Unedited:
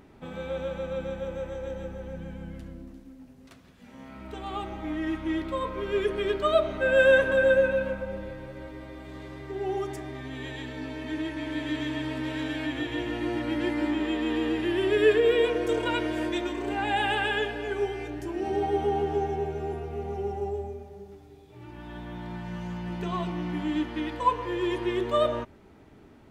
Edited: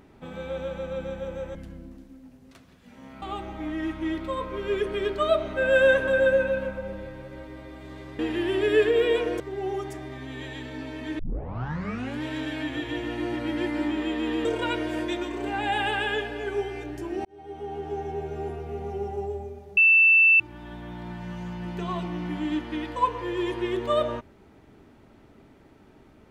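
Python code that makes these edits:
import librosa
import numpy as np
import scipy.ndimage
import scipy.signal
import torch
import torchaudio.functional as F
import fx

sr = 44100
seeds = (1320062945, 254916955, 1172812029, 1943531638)

y = fx.edit(x, sr, fx.cut(start_s=1.55, length_s=0.96),
    fx.cut(start_s=4.18, length_s=0.28),
    fx.tape_start(start_s=11.22, length_s=1.03),
    fx.move(start_s=14.48, length_s=1.21, to_s=9.43),
    fx.fade_in_span(start_s=18.49, length_s=1.19),
    fx.bleep(start_s=21.01, length_s=0.63, hz=2660.0, db=-13.5), tone=tone)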